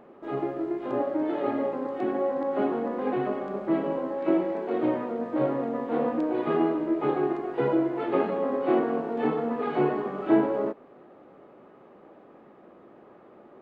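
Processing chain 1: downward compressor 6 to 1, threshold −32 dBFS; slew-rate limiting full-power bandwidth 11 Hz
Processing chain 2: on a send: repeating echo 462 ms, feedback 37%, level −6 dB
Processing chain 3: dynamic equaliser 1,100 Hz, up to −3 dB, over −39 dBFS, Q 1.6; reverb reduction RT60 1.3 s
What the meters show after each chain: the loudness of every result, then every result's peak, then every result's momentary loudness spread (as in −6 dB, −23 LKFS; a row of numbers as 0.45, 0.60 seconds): −36.5, −26.5, −30.0 LKFS; −24.0, −8.5, −9.5 dBFS; 16, 7, 7 LU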